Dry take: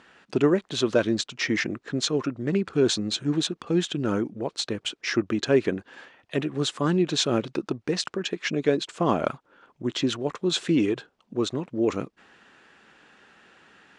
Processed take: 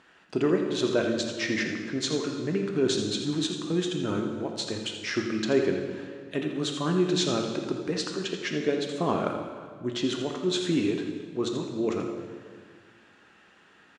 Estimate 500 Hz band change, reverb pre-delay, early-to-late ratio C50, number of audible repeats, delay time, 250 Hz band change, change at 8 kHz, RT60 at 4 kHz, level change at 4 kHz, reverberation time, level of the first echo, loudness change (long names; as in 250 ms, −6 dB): −2.0 dB, 3 ms, 4.0 dB, 1, 83 ms, −2.0 dB, −2.5 dB, 1.5 s, −2.5 dB, 1.8 s, −10.0 dB, −2.5 dB